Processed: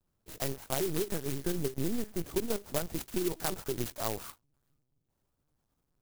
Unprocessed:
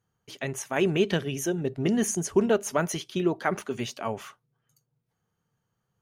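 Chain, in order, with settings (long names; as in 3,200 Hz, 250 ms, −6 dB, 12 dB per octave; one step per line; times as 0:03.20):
downward compressor 20 to 1, threshold −27 dBFS, peak gain reduction 12 dB
linear-prediction vocoder at 8 kHz pitch kept
converter with an unsteady clock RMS 0.14 ms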